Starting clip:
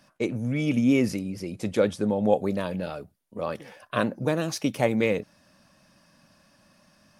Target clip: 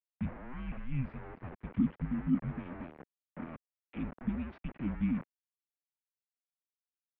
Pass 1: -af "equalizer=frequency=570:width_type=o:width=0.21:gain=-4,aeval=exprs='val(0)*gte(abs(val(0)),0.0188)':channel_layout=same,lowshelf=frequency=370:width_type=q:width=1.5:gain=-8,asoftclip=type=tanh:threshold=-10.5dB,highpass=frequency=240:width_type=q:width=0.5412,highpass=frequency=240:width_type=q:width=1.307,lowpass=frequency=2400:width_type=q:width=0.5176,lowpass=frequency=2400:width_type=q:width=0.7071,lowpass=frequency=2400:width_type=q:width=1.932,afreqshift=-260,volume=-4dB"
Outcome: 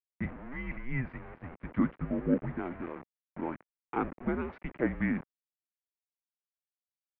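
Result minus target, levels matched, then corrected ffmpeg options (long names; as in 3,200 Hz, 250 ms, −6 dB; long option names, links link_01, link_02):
1,000 Hz band +7.0 dB
-af "asuperstop=centerf=1200:order=20:qfactor=0.56,equalizer=frequency=570:width_type=o:width=0.21:gain=-4,aeval=exprs='val(0)*gte(abs(val(0)),0.0188)':channel_layout=same,lowshelf=frequency=370:width_type=q:width=1.5:gain=-8,asoftclip=type=tanh:threshold=-10.5dB,highpass=frequency=240:width_type=q:width=0.5412,highpass=frequency=240:width_type=q:width=1.307,lowpass=frequency=2400:width_type=q:width=0.5176,lowpass=frequency=2400:width_type=q:width=0.7071,lowpass=frequency=2400:width_type=q:width=1.932,afreqshift=-260,volume=-4dB"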